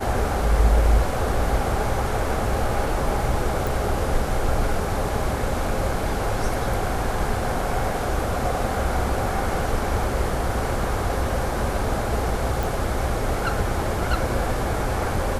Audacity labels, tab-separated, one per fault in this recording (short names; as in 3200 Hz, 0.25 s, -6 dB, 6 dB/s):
3.670000	3.670000	pop
12.630000	12.630000	pop